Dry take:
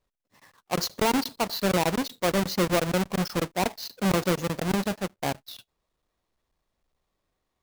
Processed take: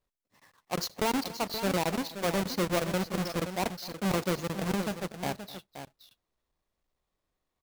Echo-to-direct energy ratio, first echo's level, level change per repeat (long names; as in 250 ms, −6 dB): −9.5 dB, −19.0 dB, repeats not evenly spaced